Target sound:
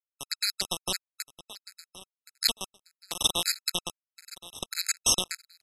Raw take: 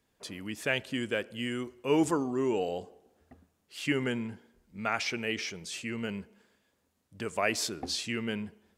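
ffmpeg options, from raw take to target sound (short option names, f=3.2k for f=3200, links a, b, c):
-af "lowpass=3.9k,anlmdn=0.398,aeval=exprs='val(0)+0.00708*(sin(2*PI*50*n/s)+sin(2*PI*2*50*n/s)/2+sin(2*PI*3*50*n/s)/3+sin(2*PI*4*50*n/s)/4+sin(2*PI*5*50*n/s)/5)':c=same,adynamicequalizer=threshold=0.00708:dfrequency=610:dqfactor=1.3:tfrequency=610:tqfactor=1.3:attack=5:release=100:ratio=0.375:range=2:mode=boostabove:tftype=bell,acompressor=threshold=-34dB:ratio=12,highshelf=f=1.9k:t=q:w=1.5:g=14,aresample=16000,acrusher=bits=3:mix=0:aa=0.000001,aresample=44100,asetrate=68796,aresample=44100,aecho=1:1:1072|2144:0.133|0.0333,afftfilt=real='re*gt(sin(2*PI*1.6*pts/sr)*(1-2*mod(floor(b*sr/1024/1300),2)),0)':imag='im*gt(sin(2*PI*1.6*pts/sr)*(1-2*mod(floor(b*sr/1024/1300),2)),0)':win_size=1024:overlap=0.75,volume=5.5dB"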